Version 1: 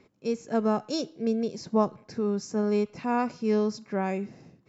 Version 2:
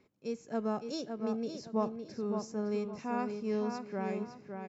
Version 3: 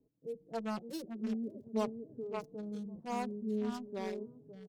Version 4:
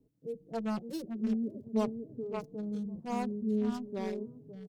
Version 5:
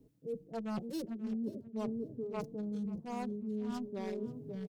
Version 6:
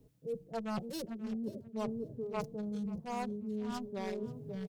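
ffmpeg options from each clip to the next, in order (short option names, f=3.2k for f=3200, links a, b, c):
-filter_complex "[0:a]asplit=2[a][b];[b]adelay=561,lowpass=f=4.1k:p=1,volume=-6dB,asplit=2[c][d];[d]adelay=561,lowpass=f=4.1k:p=1,volume=0.3,asplit=2[e][f];[f]adelay=561,lowpass=f=4.1k:p=1,volume=0.3,asplit=2[g][h];[h]adelay=561,lowpass=f=4.1k:p=1,volume=0.3[i];[a][c][e][g][i]amix=inputs=5:normalize=0,volume=-8.5dB"
-filter_complex "[0:a]acrossover=split=590[a][b];[b]acrusher=bits=5:mix=0:aa=0.5[c];[a][c]amix=inputs=2:normalize=0,asplit=2[d][e];[e]adelay=4.3,afreqshift=0.45[f];[d][f]amix=inputs=2:normalize=1"
-af "lowshelf=f=280:g=8.5"
-af "areverse,acompressor=threshold=-42dB:ratio=6,areverse,aecho=1:1:534|1068:0.1|0.016,volume=6dB"
-af "equalizer=f=290:t=o:w=0.94:g=-9.5,volume=4.5dB"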